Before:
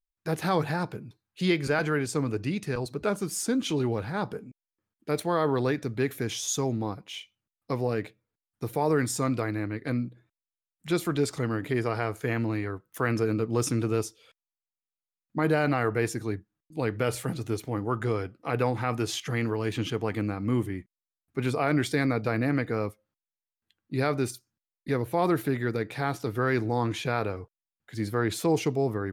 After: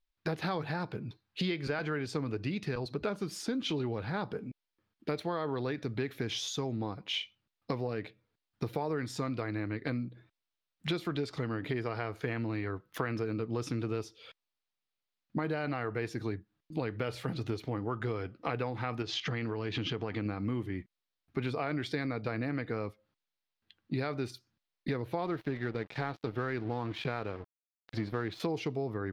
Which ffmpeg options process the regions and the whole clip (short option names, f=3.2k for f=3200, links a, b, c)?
-filter_complex "[0:a]asettb=1/sr,asplit=3[a][b][c];[a]atrim=end=19.024[d];[b]atrim=start=19.02:end=20.26,asetpts=PTS-STARTPTS,afade=t=in:d=0.004:c=qsin,afade=t=out:st=1.236:d=0.004:c=qsin,lowpass=f=6.8k:w=0.5412,lowpass=f=6.8k:w=1.3066,acompressor=threshold=-32dB:ratio=2:attack=3.2:release=140:knee=1:detection=peak[e];[c]atrim=start=20.256[f];[d][e]acrossfade=d=0.004:c1=hsin:c2=qsin[g];[g][f]acrossfade=d=0.004:c1=qsin:c2=hsin,asettb=1/sr,asplit=3[h][i][j];[h]atrim=end=25.254[k];[i]atrim=start=25.25:end=28.4,asetpts=PTS-STARTPTS,afade=t=in:d=0.004:c=qsin,afade=t=out:st=3.146:d=0.004:c=qsin,equalizer=f=10k:t=o:w=1.6:g=-9,aeval=exprs='sgn(val(0))*max(abs(val(0))-0.00708,0)':c=same[l];[j]atrim=start=28.396[m];[k][l]acrossfade=d=0.004:c1=hsin:c2=qsin[n];[n][m]acrossfade=d=0.004:c1=qsin:c2=hsin,acompressor=threshold=-37dB:ratio=6,highshelf=f=5.9k:t=q:w=1.5:g=-11.5,volume=5.5dB"